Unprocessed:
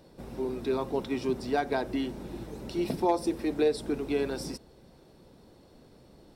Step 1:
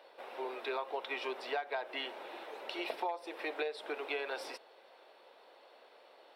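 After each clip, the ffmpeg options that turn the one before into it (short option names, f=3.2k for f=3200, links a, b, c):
-af "highpass=f=560:w=0.5412,highpass=f=560:w=1.3066,highshelf=f=4.4k:t=q:w=1.5:g=-13,acompressor=threshold=-37dB:ratio=12,volume=4dB"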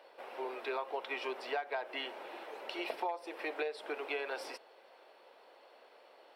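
-af "equalizer=f=3.7k:w=7.9:g=-6.5"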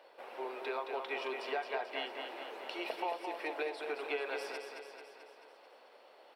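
-af "aecho=1:1:219|438|657|876|1095|1314|1533|1752:0.501|0.291|0.169|0.0978|0.0567|0.0329|0.0191|0.0111,volume=-1dB"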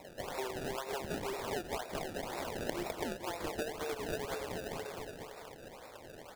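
-af "acompressor=threshold=-44dB:ratio=6,acrusher=samples=28:mix=1:aa=0.000001:lfo=1:lforange=28:lforate=2,volume=8.5dB"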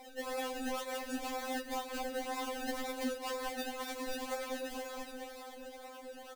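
-af "aecho=1:1:620:0.188,afftfilt=real='re*3.46*eq(mod(b,12),0)':imag='im*3.46*eq(mod(b,12),0)':win_size=2048:overlap=0.75,volume=3.5dB"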